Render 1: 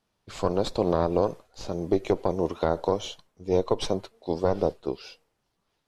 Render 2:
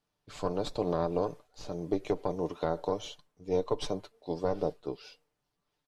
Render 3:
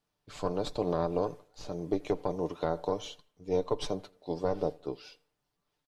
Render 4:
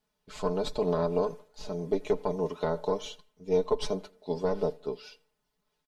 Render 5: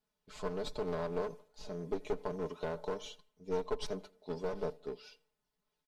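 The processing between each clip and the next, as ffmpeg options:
ffmpeg -i in.wav -af "aecho=1:1:6.8:0.43,volume=-7dB" out.wav
ffmpeg -i in.wav -filter_complex "[0:a]asplit=2[link_01][link_02];[link_02]adelay=84,lowpass=frequency=4700:poles=1,volume=-24dB,asplit=2[link_03][link_04];[link_04]adelay=84,lowpass=frequency=4700:poles=1,volume=0.4,asplit=2[link_05][link_06];[link_06]adelay=84,lowpass=frequency=4700:poles=1,volume=0.4[link_07];[link_01][link_03][link_05][link_07]amix=inputs=4:normalize=0" out.wav
ffmpeg -i in.wav -af "aecho=1:1:4.7:0.79" out.wav
ffmpeg -i in.wav -af "aeval=exprs='clip(val(0),-1,0.0316)':channel_layout=same,volume=-6.5dB" out.wav

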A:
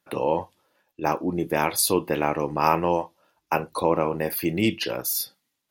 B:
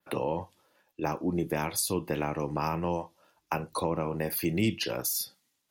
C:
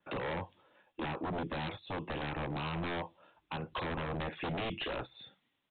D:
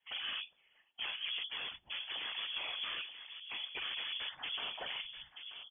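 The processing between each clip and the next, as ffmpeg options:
ffmpeg -i in.wav -filter_complex "[0:a]adynamicequalizer=threshold=0.00708:dfrequency=7200:dqfactor=0.89:tfrequency=7200:tqfactor=0.89:attack=5:release=100:ratio=0.375:range=3:mode=boostabove:tftype=bell,acrossover=split=200[link_01][link_02];[link_02]acompressor=threshold=-29dB:ratio=4[link_03];[link_01][link_03]amix=inputs=2:normalize=0" out.wav
ffmpeg -i in.wav -af "alimiter=limit=-22dB:level=0:latency=1:release=322,aresample=8000,aeval=exprs='0.0224*(abs(mod(val(0)/0.0224+3,4)-2)-1)':channel_layout=same,aresample=44100,volume=2dB" out.wav
ffmpeg -i in.wav -filter_complex "[0:a]afftfilt=real='hypot(re,im)*cos(2*PI*random(0))':imag='hypot(re,im)*sin(2*PI*random(1))':win_size=512:overlap=0.75,asplit=2[link_01][link_02];[link_02]adelay=932.9,volume=-8dB,highshelf=frequency=4000:gain=-21[link_03];[link_01][link_03]amix=inputs=2:normalize=0,lowpass=frequency=3000:width_type=q:width=0.5098,lowpass=frequency=3000:width_type=q:width=0.6013,lowpass=frequency=3000:width_type=q:width=0.9,lowpass=frequency=3000:width_type=q:width=2.563,afreqshift=-3500,volume=2dB" out.wav

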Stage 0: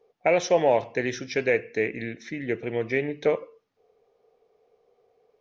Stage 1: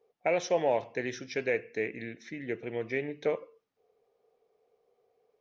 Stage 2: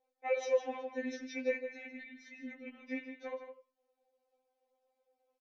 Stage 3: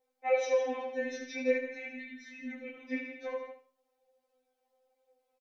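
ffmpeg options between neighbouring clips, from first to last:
ffmpeg -i in.wav -af "lowshelf=frequency=68:gain=-7,volume=-6.5dB" out.wav
ffmpeg -i in.wav -filter_complex "[0:a]asplit=2[link_01][link_02];[link_02]adelay=157.4,volume=-9dB,highshelf=frequency=4000:gain=-3.54[link_03];[link_01][link_03]amix=inputs=2:normalize=0,afftfilt=real='re*3.46*eq(mod(b,12),0)':imag='im*3.46*eq(mod(b,12),0)':win_size=2048:overlap=0.75,volume=-5dB" out.wav
ffmpeg -i in.wav -af "flanger=delay=16:depth=5.3:speed=0.45,aecho=1:1:75|150|225:0.398|0.0717|0.0129,volume=6.5dB" out.wav

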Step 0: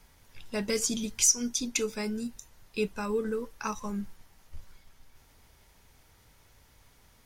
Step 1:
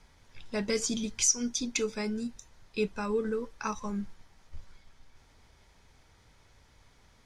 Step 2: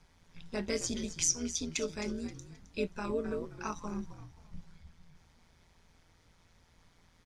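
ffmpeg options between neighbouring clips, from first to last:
ffmpeg -i in.wav -af "lowpass=6600,bandreject=frequency=2800:width=19" out.wav
ffmpeg -i in.wav -filter_complex "[0:a]tremolo=f=170:d=0.71,asplit=4[link_01][link_02][link_03][link_04];[link_02]adelay=264,afreqshift=-80,volume=-13dB[link_05];[link_03]adelay=528,afreqshift=-160,volume=-22.4dB[link_06];[link_04]adelay=792,afreqshift=-240,volume=-31.7dB[link_07];[link_01][link_05][link_06][link_07]amix=inputs=4:normalize=0,volume=-1dB" out.wav

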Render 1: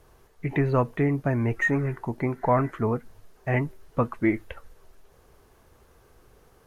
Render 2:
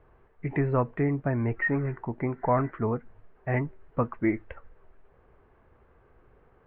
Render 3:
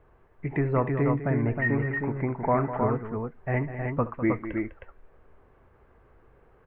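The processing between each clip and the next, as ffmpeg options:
ffmpeg -i in.wav -af "lowpass=frequency=2300:width=0.5412,lowpass=frequency=2300:width=1.3066,volume=-2.5dB" out.wav
ffmpeg -i in.wav -af "aecho=1:1:70|202|314:0.158|0.266|0.596" out.wav

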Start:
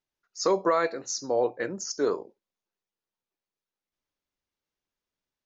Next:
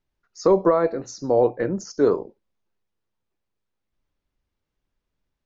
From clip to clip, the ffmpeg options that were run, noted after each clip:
ffmpeg -i in.wav -filter_complex "[0:a]aemphasis=mode=reproduction:type=bsi,acrossover=split=1100[link_01][link_02];[link_02]acompressor=threshold=-42dB:ratio=6[link_03];[link_01][link_03]amix=inputs=2:normalize=0,volume=5.5dB" out.wav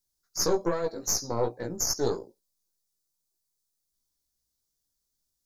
ffmpeg -i in.wav -af "aexciter=amount=9.4:drive=7.9:freq=4100,aeval=exprs='0.631*(cos(1*acos(clip(val(0)/0.631,-1,1)))-cos(1*PI/2))+0.112*(cos(4*acos(clip(val(0)/0.631,-1,1)))-cos(4*PI/2))':channel_layout=same,flanger=delay=16:depth=2.3:speed=2.5,volume=-7.5dB" out.wav

